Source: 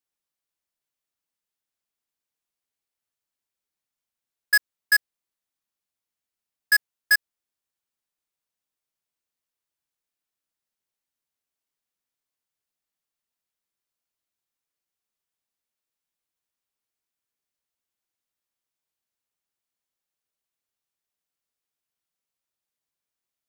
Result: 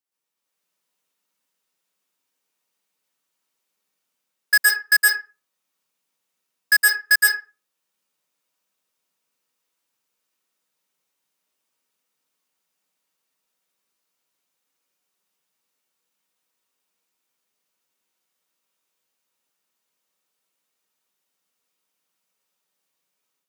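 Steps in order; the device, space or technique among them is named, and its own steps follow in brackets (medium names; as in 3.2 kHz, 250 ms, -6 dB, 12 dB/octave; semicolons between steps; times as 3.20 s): far laptop microphone (reverberation RT60 0.35 s, pre-delay 112 ms, DRR -5 dB; high-pass 160 Hz 24 dB/octave; level rider gain up to 7 dB); trim -2 dB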